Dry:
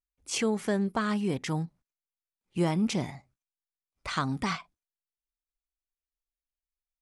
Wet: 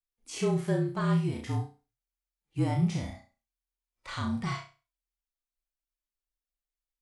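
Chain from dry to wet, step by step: flutter echo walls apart 5.7 m, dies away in 0.32 s; harmonic-percussive split percussive -16 dB; frequency shift -42 Hz

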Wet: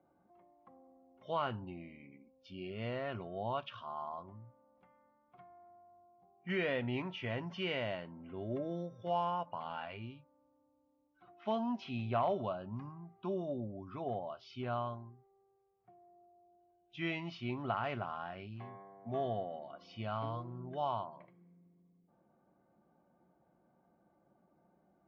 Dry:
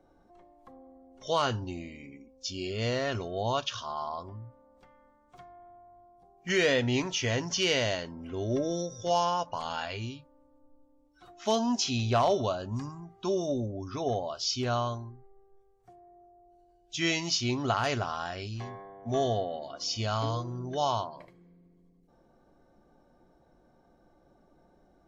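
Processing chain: cabinet simulation 120–2600 Hz, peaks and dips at 190 Hz +5 dB, 270 Hz -4 dB, 450 Hz -6 dB, 1.7 kHz -5 dB; trim -6.5 dB

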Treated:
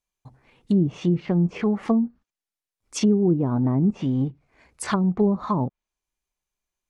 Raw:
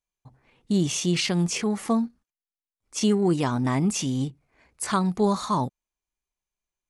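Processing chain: low-pass that closes with the level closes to 420 Hz, closed at -19 dBFS; trim +3.5 dB

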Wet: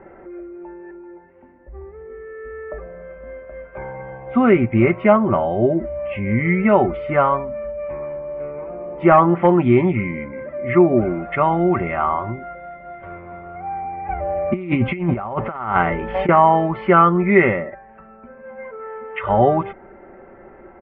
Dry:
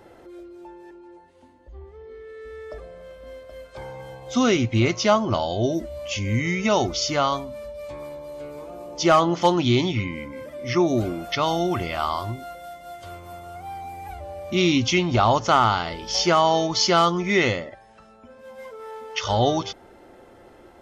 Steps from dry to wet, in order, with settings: steep low-pass 2.3 kHz 48 dB/octave; comb 5.2 ms, depth 47%; 14.08–16.29 s: compressor with a negative ratio -24 dBFS, ratio -0.5; trim +5 dB

